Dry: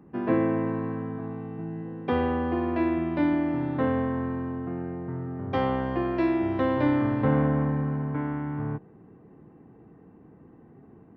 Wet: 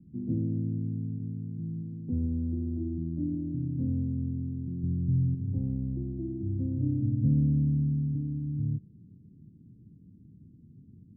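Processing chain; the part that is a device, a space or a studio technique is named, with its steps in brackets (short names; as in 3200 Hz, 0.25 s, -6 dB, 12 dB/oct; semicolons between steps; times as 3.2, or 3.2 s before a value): the neighbour's flat through the wall (LPF 230 Hz 24 dB/oct; bell 98 Hz +6 dB 0.78 oct); 4.83–5.35 low shelf 180 Hz +11 dB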